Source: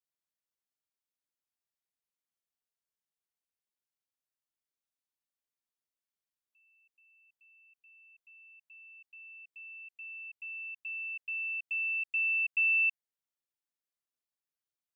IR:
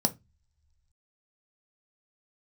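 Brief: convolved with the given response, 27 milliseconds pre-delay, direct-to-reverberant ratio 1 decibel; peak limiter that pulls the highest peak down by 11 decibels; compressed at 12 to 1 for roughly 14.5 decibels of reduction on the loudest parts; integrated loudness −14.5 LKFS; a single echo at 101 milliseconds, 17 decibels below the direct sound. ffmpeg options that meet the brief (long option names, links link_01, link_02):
-filter_complex "[0:a]acompressor=threshold=-40dB:ratio=12,alimiter=level_in=19dB:limit=-24dB:level=0:latency=1,volume=-19dB,aecho=1:1:101:0.141,asplit=2[link_01][link_02];[1:a]atrim=start_sample=2205,adelay=27[link_03];[link_02][link_03]afir=irnorm=-1:irlink=0,volume=-8.5dB[link_04];[link_01][link_04]amix=inputs=2:normalize=0,volume=29.5dB"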